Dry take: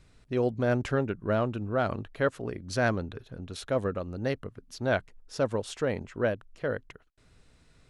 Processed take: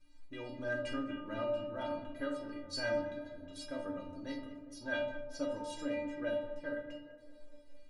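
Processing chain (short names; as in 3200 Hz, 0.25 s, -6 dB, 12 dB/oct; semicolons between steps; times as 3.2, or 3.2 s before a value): metallic resonator 290 Hz, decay 0.54 s, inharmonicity 0.008; tape echo 0.205 s, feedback 73%, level -12 dB, low-pass 1300 Hz; on a send at -2.5 dB: reverb RT60 0.55 s, pre-delay 6 ms; on the sum: gain +8.5 dB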